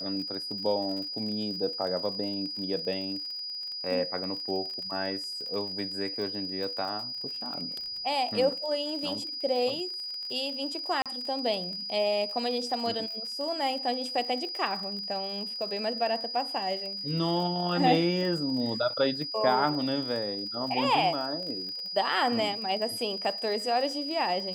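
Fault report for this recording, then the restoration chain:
crackle 43 per s -36 dBFS
whine 4.9 kHz -34 dBFS
11.02–11.06 s: dropout 37 ms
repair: de-click; band-stop 4.9 kHz, Q 30; interpolate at 11.02 s, 37 ms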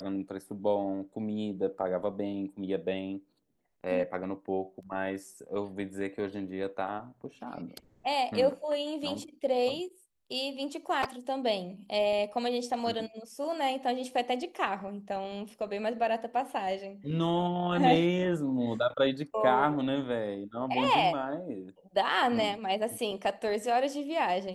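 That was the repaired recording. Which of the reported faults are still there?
nothing left

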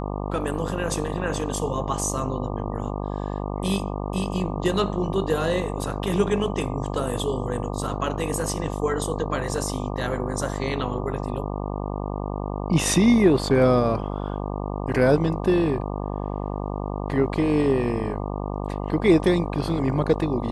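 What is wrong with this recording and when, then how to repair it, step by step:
buzz 50 Hz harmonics 24 -29 dBFS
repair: de-hum 50 Hz, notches 24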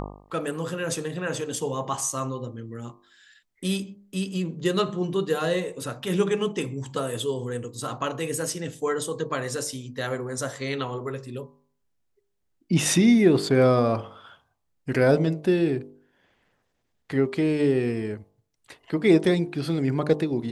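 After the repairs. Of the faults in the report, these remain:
nothing left

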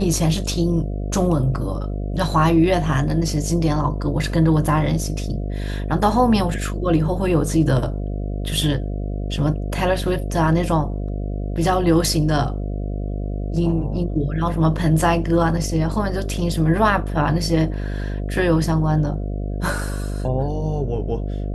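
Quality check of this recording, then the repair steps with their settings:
buzz 50 Hz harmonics 14 -25 dBFS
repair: de-hum 50 Hz, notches 14

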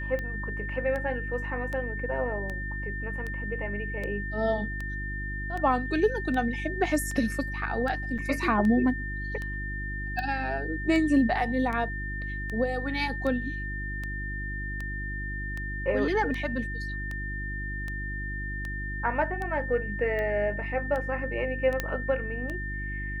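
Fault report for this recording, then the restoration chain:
hum 50 Hz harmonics 7 -35 dBFS
tick 78 rpm -22 dBFS
whine 1.8 kHz -35 dBFS
8.18–8.19 s: dropout 5.4 ms
21.80 s: pop -13 dBFS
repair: de-click; de-hum 50 Hz, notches 7; band-stop 1.8 kHz, Q 30; interpolate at 8.18 s, 5.4 ms

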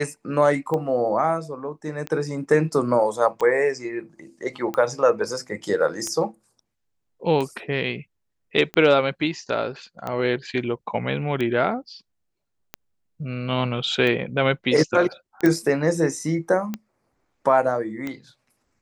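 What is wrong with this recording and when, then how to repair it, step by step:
tick 45 rpm -15 dBFS
15.46 s: pop -9 dBFS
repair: de-click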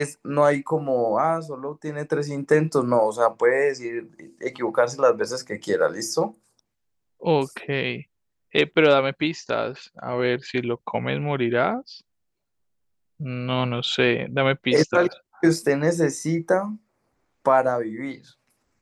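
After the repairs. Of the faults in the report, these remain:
nothing left

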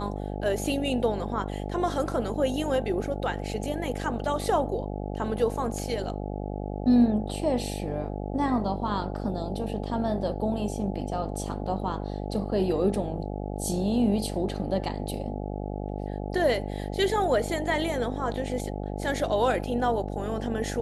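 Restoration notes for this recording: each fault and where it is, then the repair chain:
buzz 50 Hz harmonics 17 -33 dBFS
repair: de-hum 50 Hz, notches 17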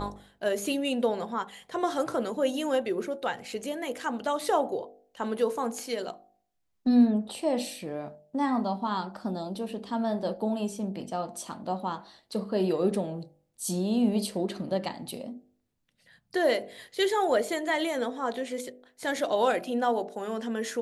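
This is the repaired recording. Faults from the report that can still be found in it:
nothing left

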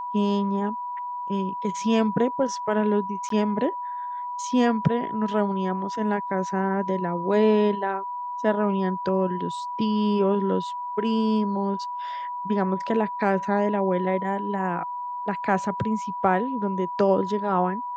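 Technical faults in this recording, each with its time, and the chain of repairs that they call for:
whine 980 Hz -29 dBFS
3.29–3.30 s: dropout 13 ms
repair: band-stop 980 Hz, Q 30; interpolate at 3.29 s, 13 ms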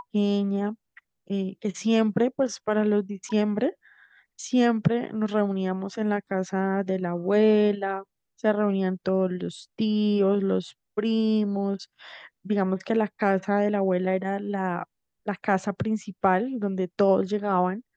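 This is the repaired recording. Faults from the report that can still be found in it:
nothing left

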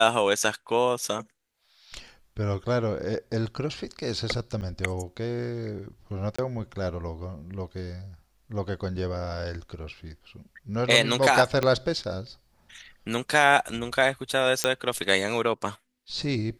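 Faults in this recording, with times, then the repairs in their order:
4.61–4.62 s: dropout 8.4 ms
6.36–6.38 s: dropout 25 ms
11.63 s: pop -11 dBFS
14.64 s: pop -6 dBFS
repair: de-click; interpolate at 4.61 s, 8.4 ms; interpolate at 6.36 s, 25 ms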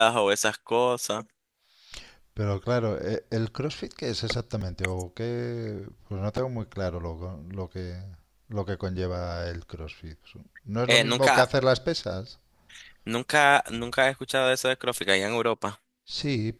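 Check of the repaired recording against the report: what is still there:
11.63 s: pop

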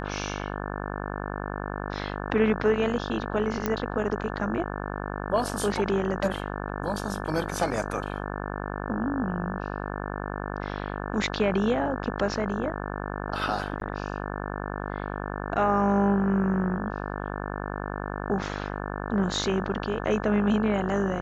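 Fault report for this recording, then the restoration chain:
buzz 50 Hz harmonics 35 -33 dBFS
3.66 s: pop -12 dBFS
13.80–13.81 s: dropout 12 ms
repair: de-click; de-hum 50 Hz, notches 35; interpolate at 13.80 s, 12 ms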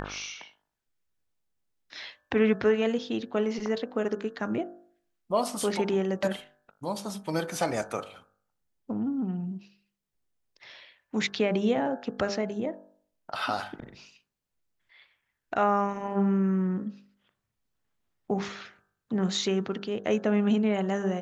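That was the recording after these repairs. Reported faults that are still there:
nothing left

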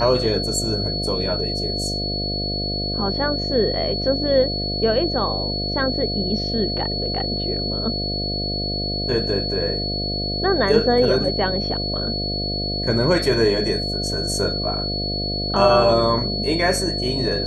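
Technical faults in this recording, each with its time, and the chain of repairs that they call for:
buzz 50 Hz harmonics 14 -27 dBFS
whine 4.4 kHz -25 dBFS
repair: de-hum 50 Hz, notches 14; band-stop 4.4 kHz, Q 30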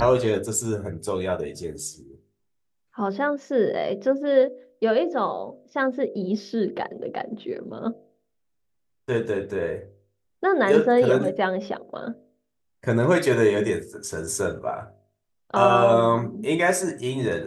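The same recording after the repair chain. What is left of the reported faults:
nothing left

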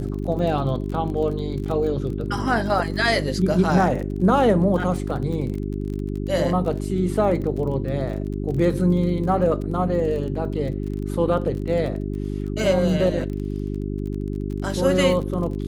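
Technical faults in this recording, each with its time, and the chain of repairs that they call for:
crackle 31 per s -30 dBFS
hum 50 Hz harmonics 8 -27 dBFS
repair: de-click; de-hum 50 Hz, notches 8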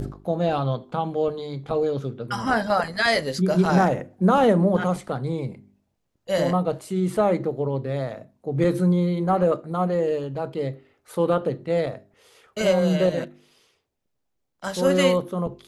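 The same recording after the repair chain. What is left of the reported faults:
nothing left

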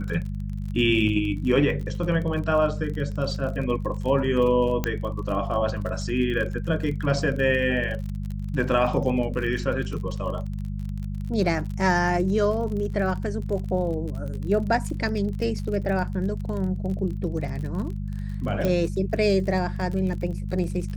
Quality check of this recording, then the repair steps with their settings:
crackle 36 per s -32 dBFS
hum 50 Hz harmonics 4 -30 dBFS
4.84 s: pop -10 dBFS
18.65 s: pop -13 dBFS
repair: de-click; de-hum 50 Hz, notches 4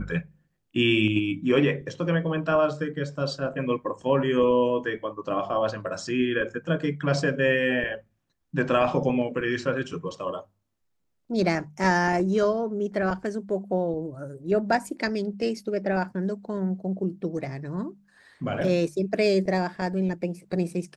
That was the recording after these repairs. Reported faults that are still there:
4.84 s: pop
18.65 s: pop

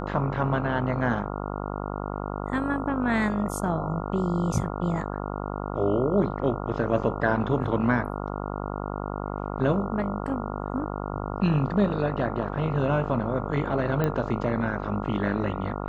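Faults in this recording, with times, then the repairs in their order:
buzz 50 Hz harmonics 28 -32 dBFS
14.04 s: pop -14 dBFS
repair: de-click; de-hum 50 Hz, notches 28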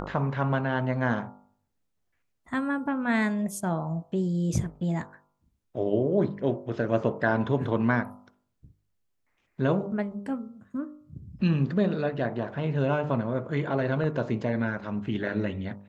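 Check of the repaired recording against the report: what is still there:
nothing left

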